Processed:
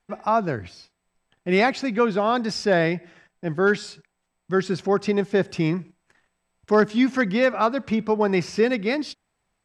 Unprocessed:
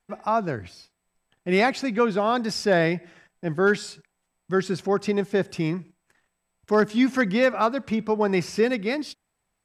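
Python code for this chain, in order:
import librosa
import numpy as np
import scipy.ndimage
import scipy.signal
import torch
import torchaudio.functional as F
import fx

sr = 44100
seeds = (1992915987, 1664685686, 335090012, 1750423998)

p1 = scipy.signal.sosfilt(scipy.signal.butter(2, 7200.0, 'lowpass', fs=sr, output='sos'), x)
p2 = fx.rider(p1, sr, range_db=10, speed_s=0.5)
p3 = p1 + (p2 * 10.0 ** (0.0 / 20.0))
y = p3 * 10.0 ** (-4.5 / 20.0)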